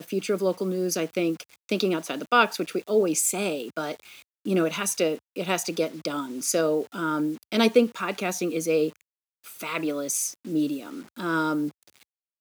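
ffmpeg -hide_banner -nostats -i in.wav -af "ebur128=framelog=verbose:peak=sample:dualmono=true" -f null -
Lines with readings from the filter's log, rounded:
Integrated loudness:
  I:         -23.1 LUFS
  Threshold: -33.5 LUFS
Loudness range:
  LRA:         3.3 LU
  Threshold: -43.3 LUFS
  LRA low:   -25.5 LUFS
  LRA high:  -22.2 LUFS
Sample peak:
  Peak:       -6.9 dBFS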